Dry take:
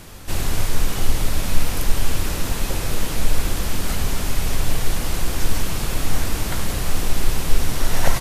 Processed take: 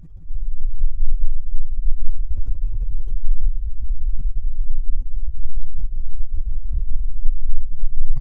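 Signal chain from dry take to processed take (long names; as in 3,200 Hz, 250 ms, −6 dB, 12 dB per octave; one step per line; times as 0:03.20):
expanding power law on the bin magnitudes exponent 3
parametric band 6,100 Hz +5.5 dB 0.39 octaves
repeating echo 173 ms, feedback 46%, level −6.5 dB
level +3.5 dB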